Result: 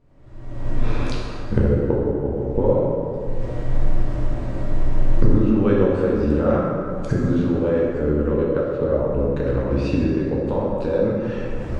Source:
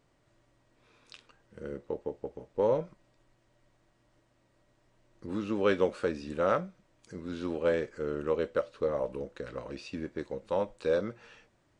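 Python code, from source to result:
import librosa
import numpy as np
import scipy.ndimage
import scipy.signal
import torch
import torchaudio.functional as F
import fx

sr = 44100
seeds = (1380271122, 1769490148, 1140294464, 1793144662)

y = fx.recorder_agc(x, sr, target_db=-21.0, rise_db_per_s=45.0, max_gain_db=30)
y = fx.tilt_eq(y, sr, slope=-3.5)
y = fx.rev_plate(y, sr, seeds[0], rt60_s=2.5, hf_ratio=0.55, predelay_ms=0, drr_db=-4.5)
y = y * librosa.db_to_amplitude(-1.0)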